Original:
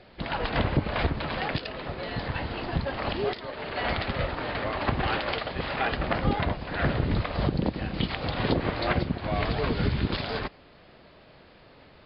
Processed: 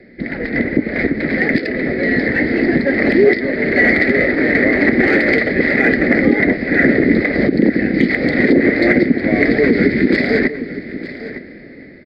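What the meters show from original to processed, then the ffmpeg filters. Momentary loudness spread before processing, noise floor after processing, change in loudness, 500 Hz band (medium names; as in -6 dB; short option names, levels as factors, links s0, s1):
6 LU, -36 dBFS, +15.0 dB, +15.5 dB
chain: -filter_complex "[0:a]dynaudnorm=f=520:g=5:m=3.76,asplit=2[s0][s1];[s1]asoftclip=type=tanh:threshold=0.133,volume=0.422[s2];[s0][s2]amix=inputs=2:normalize=0,lowshelf=f=240:g=-11.5,acrossover=split=240|1600[s3][s4][s5];[s3]acompressor=threshold=0.0126:ratio=6[s6];[s6][s4][s5]amix=inputs=3:normalize=0,firequalizer=gain_entry='entry(110,0);entry(240,11);entry(1000,-28);entry(2000,6);entry(2800,-26);entry(4400,-13)':delay=0.05:min_phase=1,aecho=1:1:909:0.188,alimiter=level_in=3.16:limit=0.891:release=50:level=0:latency=1,volume=0.891"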